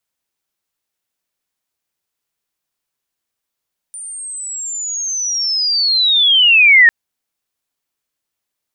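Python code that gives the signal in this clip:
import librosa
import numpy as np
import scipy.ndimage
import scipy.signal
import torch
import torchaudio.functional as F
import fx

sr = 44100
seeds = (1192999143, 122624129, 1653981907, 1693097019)

y = fx.chirp(sr, length_s=2.95, from_hz=9200.0, to_hz=1800.0, law='linear', from_db=-27.0, to_db=-3.5)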